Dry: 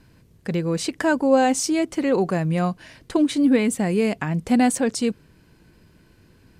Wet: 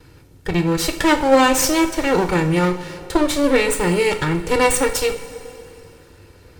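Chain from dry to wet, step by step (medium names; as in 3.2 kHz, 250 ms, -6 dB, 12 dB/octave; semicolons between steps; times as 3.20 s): comb filter that takes the minimum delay 2.2 ms; two-slope reverb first 0.43 s, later 2.7 s, from -15 dB, DRR 5 dB; dynamic bell 500 Hz, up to -6 dB, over -33 dBFS, Q 0.78; trim +7.5 dB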